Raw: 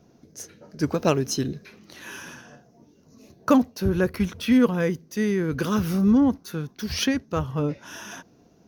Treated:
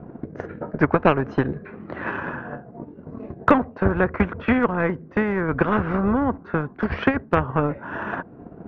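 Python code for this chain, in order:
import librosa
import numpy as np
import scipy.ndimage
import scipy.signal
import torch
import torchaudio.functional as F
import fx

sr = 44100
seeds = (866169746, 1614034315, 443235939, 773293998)

y = scipy.signal.sosfilt(scipy.signal.butter(4, 1600.0, 'lowpass', fs=sr, output='sos'), x)
y = fx.transient(y, sr, attack_db=9, sustain_db=-4)
y = fx.spectral_comp(y, sr, ratio=2.0)
y = F.gain(torch.from_numpy(y), -2.0).numpy()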